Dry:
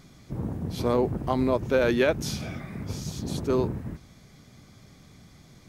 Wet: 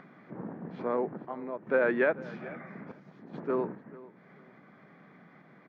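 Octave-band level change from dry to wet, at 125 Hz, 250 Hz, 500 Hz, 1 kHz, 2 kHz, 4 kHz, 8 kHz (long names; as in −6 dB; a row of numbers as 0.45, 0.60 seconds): −16.0 dB, −8.0 dB, −4.5 dB, −5.0 dB, −0.5 dB, below −20 dB, below −35 dB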